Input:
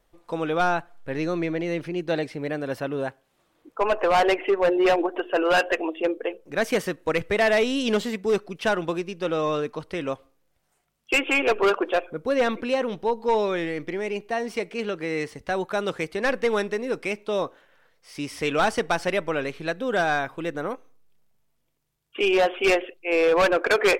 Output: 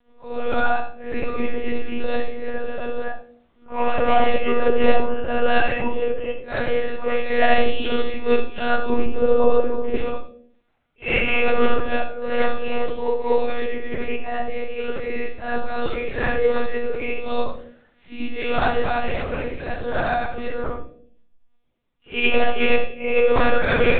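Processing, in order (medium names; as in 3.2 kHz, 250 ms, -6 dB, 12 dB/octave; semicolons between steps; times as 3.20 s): phase randomisation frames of 200 ms; 8.90–9.96 s: tilt shelf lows +9.5 dB, about 1.4 kHz; 19.08–20.13 s: ring modulator 71 Hz; monotone LPC vocoder at 8 kHz 240 Hz; reverberation RT60 0.55 s, pre-delay 65 ms, DRR 10.5 dB; trim +2 dB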